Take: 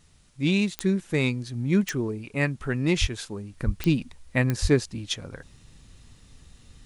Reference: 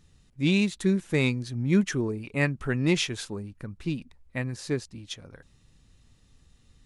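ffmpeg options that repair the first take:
-filter_complex "[0:a]adeclick=t=4,asplit=3[s0][s1][s2];[s0]afade=t=out:st=3:d=0.02[s3];[s1]highpass=f=140:w=0.5412,highpass=f=140:w=1.3066,afade=t=in:st=3:d=0.02,afade=t=out:st=3.12:d=0.02[s4];[s2]afade=t=in:st=3.12:d=0.02[s5];[s3][s4][s5]amix=inputs=3:normalize=0,asplit=3[s6][s7][s8];[s6]afade=t=out:st=3.65:d=0.02[s9];[s7]highpass=f=140:w=0.5412,highpass=f=140:w=1.3066,afade=t=in:st=3.65:d=0.02,afade=t=out:st=3.77:d=0.02[s10];[s8]afade=t=in:st=3.77:d=0.02[s11];[s9][s10][s11]amix=inputs=3:normalize=0,asplit=3[s12][s13][s14];[s12]afade=t=out:st=4.61:d=0.02[s15];[s13]highpass=f=140:w=0.5412,highpass=f=140:w=1.3066,afade=t=in:st=4.61:d=0.02,afade=t=out:st=4.73:d=0.02[s16];[s14]afade=t=in:st=4.73:d=0.02[s17];[s15][s16][s17]amix=inputs=3:normalize=0,agate=range=0.0891:threshold=0.00562,asetnsamples=n=441:p=0,asendcmd='3.53 volume volume -8dB',volume=1"

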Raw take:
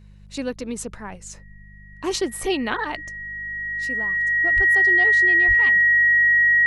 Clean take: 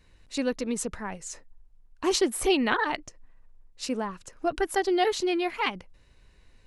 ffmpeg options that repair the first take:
-filter_complex "[0:a]bandreject=f=50.1:t=h:w=4,bandreject=f=100.2:t=h:w=4,bandreject=f=150.3:t=h:w=4,bandreject=f=200.4:t=h:w=4,bandreject=f=1900:w=30,asplit=3[s0][s1][s2];[s0]afade=t=out:st=4.55:d=0.02[s3];[s1]highpass=f=140:w=0.5412,highpass=f=140:w=1.3066,afade=t=in:st=4.55:d=0.02,afade=t=out:st=4.67:d=0.02[s4];[s2]afade=t=in:st=4.67:d=0.02[s5];[s3][s4][s5]amix=inputs=3:normalize=0,asplit=3[s6][s7][s8];[s6]afade=t=out:st=5.47:d=0.02[s9];[s7]highpass=f=140:w=0.5412,highpass=f=140:w=1.3066,afade=t=in:st=5.47:d=0.02,afade=t=out:st=5.59:d=0.02[s10];[s8]afade=t=in:st=5.59:d=0.02[s11];[s9][s10][s11]amix=inputs=3:normalize=0,asetnsamples=n=441:p=0,asendcmd='3.24 volume volume 6.5dB',volume=1"

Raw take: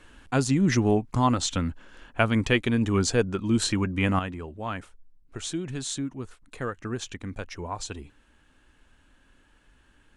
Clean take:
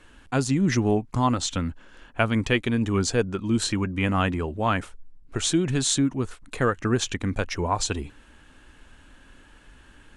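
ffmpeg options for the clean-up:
-af "asetnsamples=n=441:p=0,asendcmd='4.19 volume volume 9dB',volume=1"

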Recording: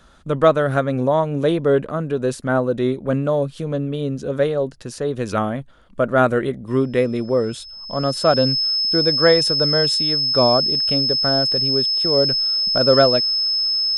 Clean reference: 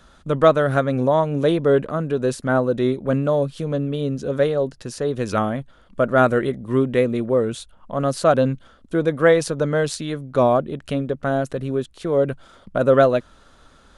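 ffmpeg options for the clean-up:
-af "bandreject=f=5200:w=30"

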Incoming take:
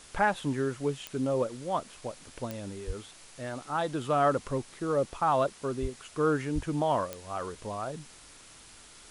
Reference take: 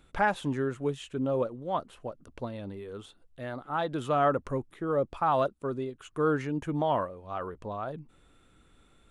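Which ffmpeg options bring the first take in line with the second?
-filter_complex "[0:a]adeclick=t=4,asplit=3[s0][s1][s2];[s0]afade=t=out:st=2.86:d=0.02[s3];[s1]highpass=f=140:w=0.5412,highpass=f=140:w=1.3066,afade=t=in:st=2.86:d=0.02,afade=t=out:st=2.98:d=0.02[s4];[s2]afade=t=in:st=2.98:d=0.02[s5];[s3][s4][s5]amix=inputs=3:normalize=0,asplit=3[s6][s7][s8];[s6]afade=t=out:st=5.81:d=0.02[s9];[s7]highpass=f=140:w=0.5412,highpass=f=140:w=1.3066,afade=t=in:st=5.81:d=0.02,afade=t=out:st=5.93:d=0.02[s10];[s8]afade=t=in:st=5.93:d=0.02[s11];[s9][s10][s11]amix=inputs=3:normalize=0,asplit=3[s12][s13][s14];[s12]afade=t=out:st=6.54:d=0.02[s15];[s13]highpass=f=140:w=0.5412,highpass=f=140:w=1.3066,afade=t=in:st=6.54:d=0.02,afade=t=out:st=6.66:d=0.02[s16];[s14]afade=t=in:st=6.66:d=0.02[s17];[s15][s16][s17]amix=inputs=3:normalize=0,afwtdn=0.0032"

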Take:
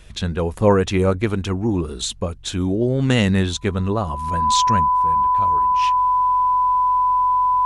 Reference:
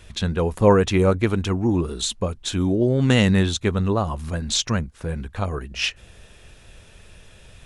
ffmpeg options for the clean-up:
-af "bandreject=f=45.6:t=h:w=4,bandreject=f=91.2:t=h:w=4,bandreject=f=136.8:t=h:w=4,bandreject=f=1000:w=30,asetnsamples=n=441:p=0,asendcmd='4.91 volume volume 7.5dB',volume=1"

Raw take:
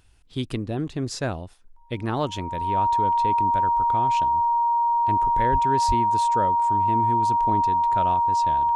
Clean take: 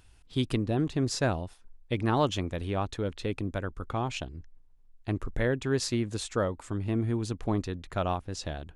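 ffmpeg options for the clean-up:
-filter_complex "[0:a]bandreject=f=940:w=30,asplit=3[s0][s1][s2];[s0]afade=t=out:st=5.51:d=0.02[s3];[s1]highpass=f=140:w=0.5412,highpass=f=140:w=1.3066,afade=t=in:st=5.51:d=0.02,afade=t=out:st=5.63:d=0.02[s4];[s2]afade=t=in:st=5.63:d=0.02[s5];[s3][s4][s5]amix=inputs=3:normalize=0,asplit=3[s6][s7][s8];[s6]afade=t=out:st=5.87:d=0.02[s9];[s7]highpass=f=140:w=0.5412,highpass=f=140:w=1.3066,afade=t=in:st=5.87:d=0.02,afade=t=out:st=5.99:d=0.02[s10];[s8]afade=t=in:st=5.99:d=0.02[s11];[s9][s10][s11]amix=inputs=3:normalize=0"

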